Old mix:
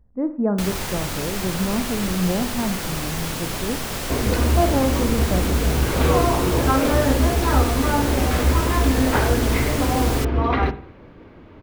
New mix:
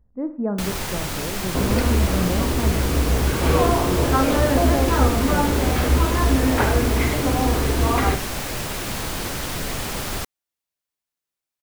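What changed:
speech -3.5 dB; second sound: entry -2.55 s

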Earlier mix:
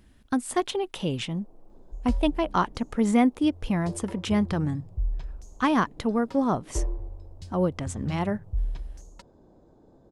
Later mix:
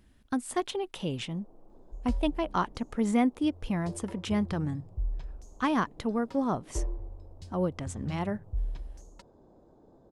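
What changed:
speech -4.5 dB; second sound -4.0 dB

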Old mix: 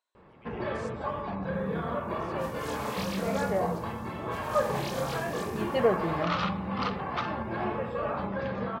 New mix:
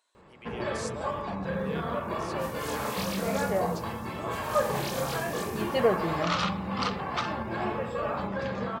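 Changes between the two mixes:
speech +10.5 dB; first sound: remove air absorption 110 m; master: add high shelf 5800 Hz +8 dB

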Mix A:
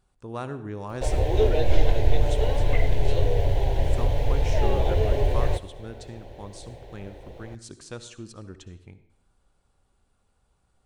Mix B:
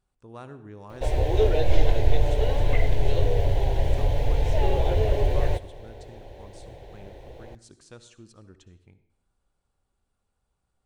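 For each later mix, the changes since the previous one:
speech -8.5 dB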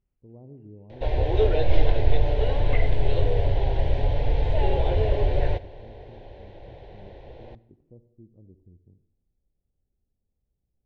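speech: add Gaussian blur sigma 17 samples; master: add LPF 4400 Hz 24 dB/oct

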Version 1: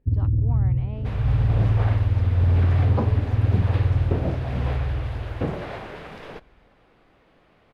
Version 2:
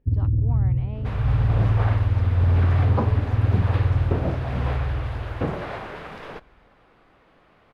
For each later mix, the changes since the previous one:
second sound: add bell 1200 Hz +4.5 dB 1.2 oct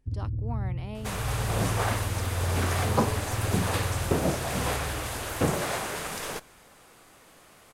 first sound -10.5 dB; master: remove air absorption 360 m

